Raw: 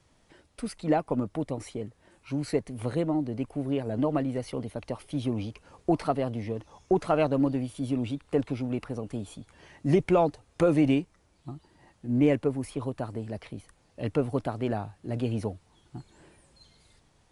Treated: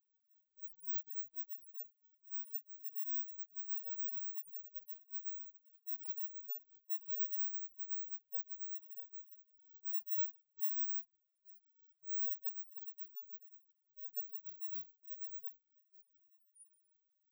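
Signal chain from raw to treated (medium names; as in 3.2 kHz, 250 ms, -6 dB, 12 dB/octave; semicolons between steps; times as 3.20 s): bit-reversed sample order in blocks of 16 samples; differentiator; in parallel at -1 dB: compressor with a negative ratio -34 dBFS, ratio -1; on the sum: loudest bins only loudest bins 1; de-hum 94.68 Hz, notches 28; trim -2 dB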